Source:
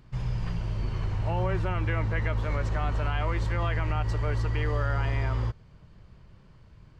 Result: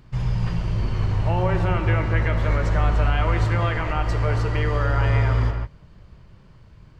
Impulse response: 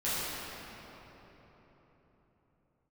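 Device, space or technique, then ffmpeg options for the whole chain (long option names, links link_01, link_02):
keyed gated reverb: -filter_complex "[0:a]asplit=3[link_01][link_02][link_03];[1:a]atrim=start_sample=2205[link_04];[link_02][link_04]afir=irnorm=-1:irlink=0[link_05];[link_03]apad=whole_len=308428[link_06];[link_05][link_06]sidechaingate=range=-33dB:threshold=-44dB:ratio=16:detection=peak,volume=-13.5dB[link_07];[link_01][link_07]amix=inputs=2:normalize=0,volume=4.5dB"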